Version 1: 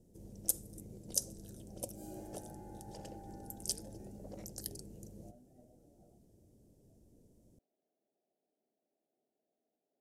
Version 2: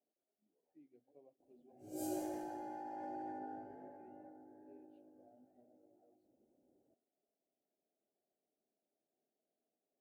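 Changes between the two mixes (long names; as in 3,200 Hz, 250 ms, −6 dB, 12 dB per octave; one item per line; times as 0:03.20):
speech −4.0 dB
first sound: muted
second sound +9.0 dB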